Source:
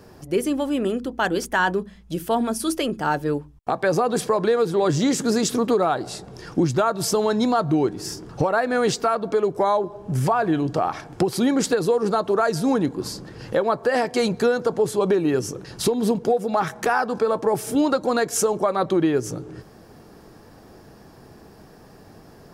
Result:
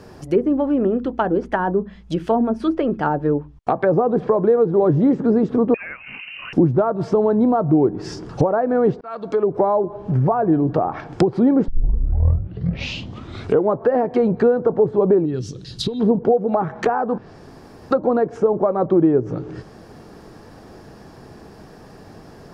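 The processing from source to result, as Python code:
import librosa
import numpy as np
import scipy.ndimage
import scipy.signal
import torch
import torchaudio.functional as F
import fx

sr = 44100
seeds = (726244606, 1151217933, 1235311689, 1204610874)

y = fx.freq_invert(x, sr, carrier_hz=2900, at=(5.74, 6.53))
y = fx.curve_eq(y, sr, hz=(130.0, 890.0, 2400.0, 3800.0, 5500.0), db=(0, -18, -10, 7, -1), at=(15.24, 15.99), fade=0.02)
y = fx.edit(y, sr, fx.fade_in_span(start_s=9.01, length_s=0.54),
    fx.tape_start(start_s=11.68, length_s=2.17),
    fx.room_tone_fill(start_s=17.18, length_s=0.73), tone=tone)
y = fx.env_lowpass_down(y, sr, base_hz=740.0, full_db=-18.5)
y = fx.high_shelf(y, sr, hz=9900.0, db=-9.0)
y = F.gain(torch.from_numpy(y), 5.0).numpy()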